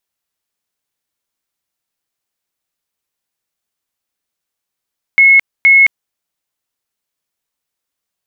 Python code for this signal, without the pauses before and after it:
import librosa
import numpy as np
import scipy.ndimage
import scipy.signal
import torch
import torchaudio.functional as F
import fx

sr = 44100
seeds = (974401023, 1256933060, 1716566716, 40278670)

y = fx.tone_burst(sr, hz=2180.0, cycles=470, every_s=0.47, bursts=2, level_db=-3.5)